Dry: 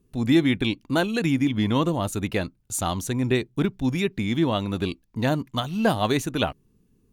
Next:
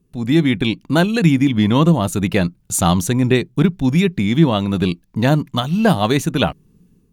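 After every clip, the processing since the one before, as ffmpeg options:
-af "equalizer=f=170:t=o:w=0.34:g=9.5,dynaudnorm=f=150:g=5:m=3.55"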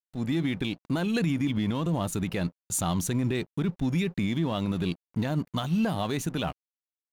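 -af "alimiter=limit=0.266:level=0:latency=1:release=46,aeval=exprs='sgn(val(0))*max(abs(val(0))-0.00891,0)':c=same,volume=0.473"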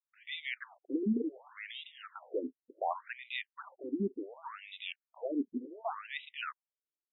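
-af "afftfilt=real='re*between(b*sr/1024,300*pow(2800/300,0.5+0.5*sin(2*PI*0.68*pts/sr))/1.41,300*pow(2800/300,0.5+0.5*sin(2*PI*0.68*pts/sr))*1.41)':imag='im*between(b*sr/1024,300*pow(2800/300,0.5+0.5*sin(2*PI*0.68*pts/sr))/1.41,300*pow(2800/300,0.5+0.5*sin(2*PI*0.68*pts/sr))*1.41)':win_size=1024:overlap=0.75,volume=1.12"

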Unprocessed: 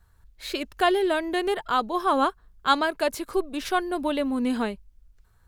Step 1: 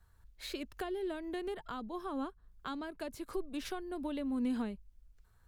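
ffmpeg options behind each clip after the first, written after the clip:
-filter_complex "[0:a]acrossover=split=280[s0][s1];[s1]acompressor=threshold=0.0178:ratio=10[s2];[s0][s2]amix=inputs=2:normalize=0,volume=0.531"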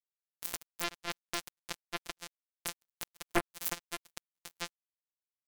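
-af "afftfilt=real='hypot(re,im)*cos(PI*b)':imag='0':win_size=1024:overlap=0.75,acrusher=bits=4:mix=0:aa=0.5,aeval=exprs='0.0668*(cos(1*acos(clip(val(0)/0.0668,-1,1)))-cos(1*PI/2))+0.0237*(cos(3*acos(clip(val(0)/0.0668,-1,1)))-cos(3*PI/2))+0.00473*(cos(5*acos(clip(val(0)/0.0668,-1,1)))-cos(5*PI/2))+0.0237*(cos(8*acos(clip(val(0)/0.0668,-1,1)))-cos(8*PI/2))':c=same,volume=4.22"

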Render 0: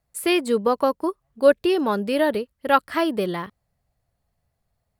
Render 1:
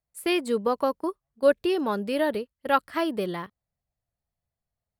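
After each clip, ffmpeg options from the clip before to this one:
-af "agate=range=0.355:threshold=0.0282:ratio=16:detection=peak,volume=0.596"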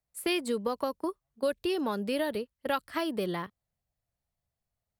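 -filter_complex "[0:a]acrossover=split=140|3000[s0][s1][s2];[s1]acompressor=threshold=0.0398:ratio=4[s3];[s0][s3][s2]amix=inputs=3:normalize=0"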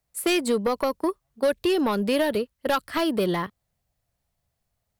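-af "aeval=exprs='0.158*sin(PI/2*1.78*val(0)/0.158)':c=same"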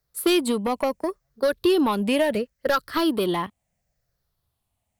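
-af "afftfilt=real='re*pow(10,8/40*sin(2*PI*(0.58*log(max(b,1)*sr/1024/100)/log(2)-(-0.72)*(pts-256)/sr)))':imag='im*pow(10,8/40*sin(2*PI*(0.58*log(max(b,1)*sr/1024/100)/log(2)-(-0.72)*(pts-256)/sr)))':win_size=1024:overlap=0.75"

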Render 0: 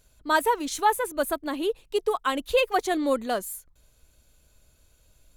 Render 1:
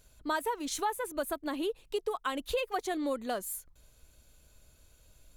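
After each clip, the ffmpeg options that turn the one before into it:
-af "acompressor=threshold=0.0251:ratio=3"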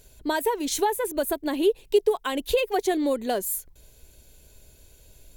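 -af "equalizer=f=400:t=o:w=0.33:g=7,equalizer=f=1250:t=o:w=0.33:g=-12,equalizer=f=16000:t=o:w=0.33:g=11,volume=2.37"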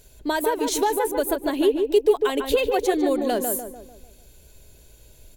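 -filter_complex "[0:a]asplit=2[s0][s1];[s1]adelay=148,lowpass=f=1500:p=1,volume=0.631,asplit=2[s2][s3];[s3]adelay=148,lowpass=f=1500:p=1,volume=0.48,asplit=2[s4][s5];[s5]adelay=148,lowpass=f=1500:p=1,volume=0.48,asplit=2[s6][s7];[s7]adelay=148,lowpass=f=1500:p=1,volume=0.48,asplit=2[s8][s9];[s9]adelay=148,lowpass=f=1500:p=1,volume=0.48,asplit=2[s10][s11];[s11]adelay=148,lowpass=f=1500:p=1,volume=0.48[s12];[s0][s2][s4][s6][s8][s10][s12]amix=inputs=7:normalize=0,volume=1.19"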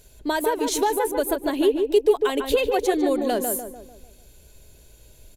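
-af "aresample=32000,aresample=44100"

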